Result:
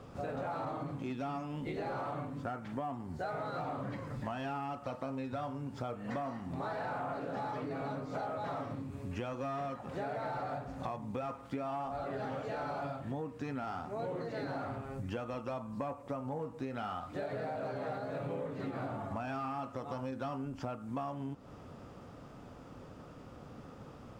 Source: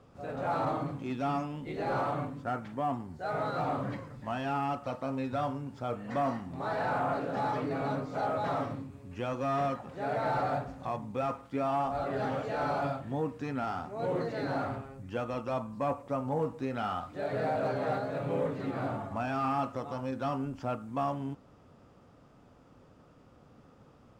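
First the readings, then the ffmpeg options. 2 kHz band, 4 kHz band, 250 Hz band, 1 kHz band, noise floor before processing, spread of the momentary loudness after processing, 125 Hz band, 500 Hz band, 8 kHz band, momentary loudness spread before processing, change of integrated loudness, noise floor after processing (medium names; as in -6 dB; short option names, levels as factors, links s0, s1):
-5.5 dB, -5.0 dB, -4.5 dB, -6.5 dB, -59 dBFS, 11 LU, -4.5 dB, -6.0 dB, no reading, 6 LU, -5.5 dB, -52 dBFS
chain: -af "acompressor=threshold=0.00708:ratio=12,volume=2.37"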